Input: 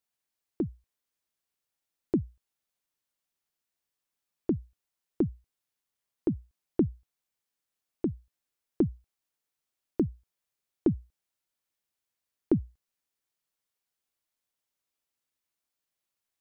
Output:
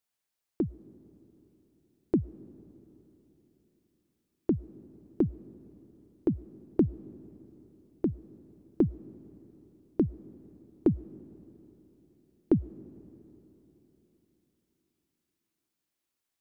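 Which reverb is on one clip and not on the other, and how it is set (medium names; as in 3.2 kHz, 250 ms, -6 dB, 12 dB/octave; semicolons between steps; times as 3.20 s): algorithmic reverb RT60 3.8 s, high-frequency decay 0.8×, pre-delay 65 ms, DRR 18.5 dB; trim +1 dB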